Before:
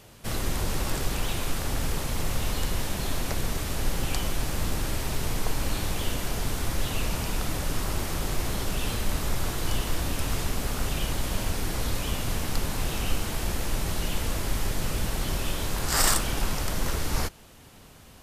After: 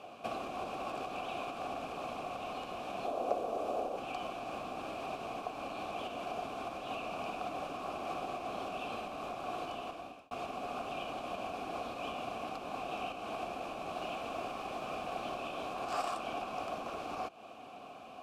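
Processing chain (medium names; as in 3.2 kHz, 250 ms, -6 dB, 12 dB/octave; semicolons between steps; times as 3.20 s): peaking EQ 260 Hz +9 dB 1.1 oct; compression 6:1, threshold -32 dBFS, peak gain reduction 14.5 dB; 3.06–3.98 s: ten-band graphic EQ 125 Hz -7 dB, 500 Hz +11 dB, 2 kHz -7 dB, 4 kHz -3 dB; 13.95–15.34 s: added noise pink -45 dBFS; vowel filter a; 9.76–10.31 s: fade out; trim +14 dB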